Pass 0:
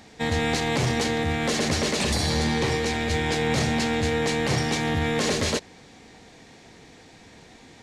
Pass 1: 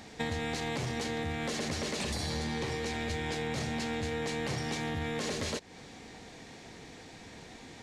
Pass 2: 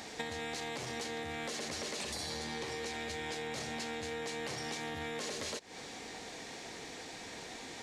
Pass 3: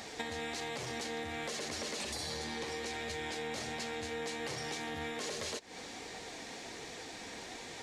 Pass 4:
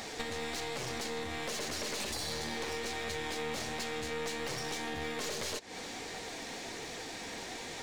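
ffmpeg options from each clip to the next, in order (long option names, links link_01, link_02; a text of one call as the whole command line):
ffmpeg -i in.wav -af "acompressor=threshold=-32dB:ratio=6" out.wav
ffmpeg -i in.wav -af "bass=frequency=250:gain=-10,treble=frequency=4000:gain=3,acompressor=threshold=-41dB:ratio=6,volume=4dB" out.wav
ffmpeg -i in.wav -af "flanger=delay=1.5:depth=2.8:regen=-61:speed=1.3:shape=triangular,volume=4.5dB" out.wav
ffmpeg -i in.wav -af "aeval=exprs='clip(val(0),-1,0.00562)':channel_layout=same,volume=4.5dB" out.wav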